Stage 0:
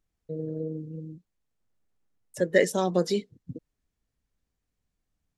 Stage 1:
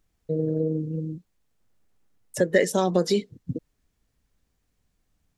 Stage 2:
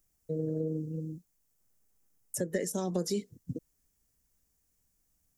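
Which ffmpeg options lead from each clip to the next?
ffmpeg -i in.wav -af "acompressor=threshold=-28dB:ratio=2.5,volume=8.5dB" out.wav
ffmpeg -i in.wav -filter_complex "[0:a]aexciter=amount=4.6:drive=4.5:freq=5400,acrossover=split=370[link_01][link_02];[link_02]acompressor=threshold=-27dB:ratio=10[link_03];[link_01][link_03]amix=inputs=2:normalize=0,volume=-7dB" out.wav

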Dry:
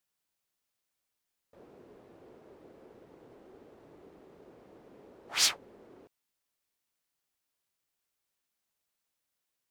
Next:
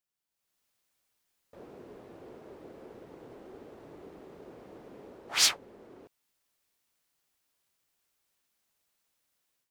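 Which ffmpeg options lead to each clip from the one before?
ffmpeg -i in.wav -af "dynaudnorm=framelen=300:gausssize=3:maxgain=13dB,volume=-7dB" out.wav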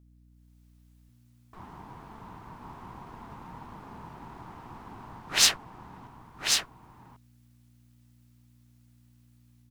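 ffmpeg -i in.wav -af "aeval=exprs='val(0)*sin(2*PI*550*n/s)':channel_layout=same,aeval=exprs='val(0)+0.000708*(sin(2*PI*60*n/s)+sin(2*PI*2*60*n/s)/2+sin(2*PI*3*60*n/s)/3+sin(2*PI*4*60*n/s)/4+sin(2*PI*5*60*n/s)/5)':channel_layout=same,aecho=1:1:1092:0.596,volume=6dB" out.wav

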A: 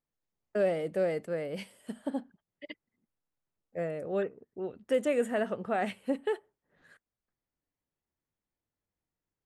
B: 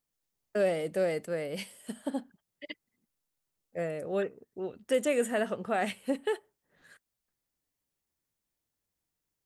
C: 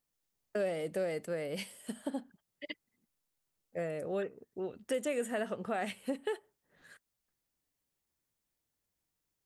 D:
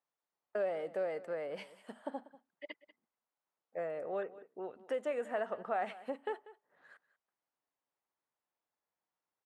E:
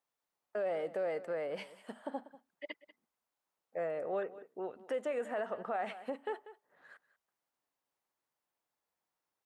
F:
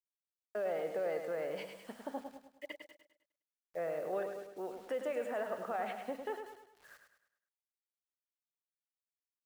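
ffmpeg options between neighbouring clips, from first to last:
ffmpeg -i in.wav -af "highshelf=frequency=3300:gain=10" out.wav
ffmpeg -i in.wav -af "acompressor=threshold=-35dB:ratio=2" out.wav
ffmpeg -i in.wav -af "bandpass=frequency=910:width_type=q:width=1.3:csg=0,aecho=1:1:191:0.126,volume=3.5dB" out.wav
ffmpeg -i in.wav -af "alimiter=level_in=6dB:limit=-24dB:level=0:latency=1:release=40,volume=-6dB,volume=2.5dB" out.wav
ffmpeg -i in.wav -filter_complex "[0:a]acrusher=bits=9:mix=0:aa=0.000001,asplit=2[link_01][link_02];[link_02]aecho=0:1:103|206|309|412|515:0.447|0.192|0.0826|0.0355|0.0153[link_03];[link_01][link_03]amix=inputs=2:normalize=0,volume=-1.5dB" out.wav

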